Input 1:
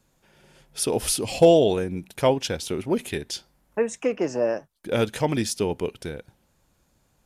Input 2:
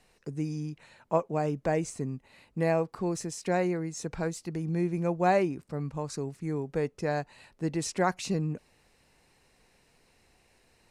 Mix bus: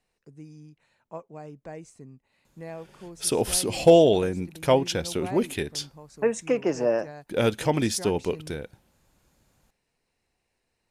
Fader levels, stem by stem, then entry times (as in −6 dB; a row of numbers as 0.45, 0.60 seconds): 0.0, −12.5 decibels; 2.45, 0.00 seconds